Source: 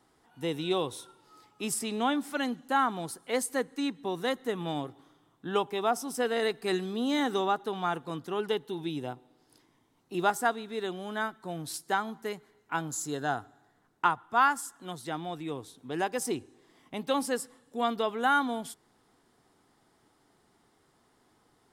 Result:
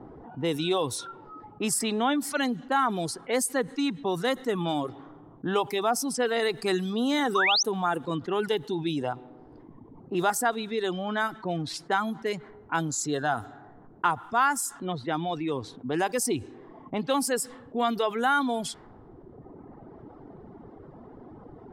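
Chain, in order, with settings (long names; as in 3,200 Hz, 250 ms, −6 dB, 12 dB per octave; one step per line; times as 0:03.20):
sound drawn into the spectrogram rise, 0:07.35–0:07.63, 1,000–6,400 Hz −25 dBFS
low-pass that shuts in the quiet parts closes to 580 Hz, open at −28.5 dBFS
reverb reduction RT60 1.1 s
envelope flattener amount 50%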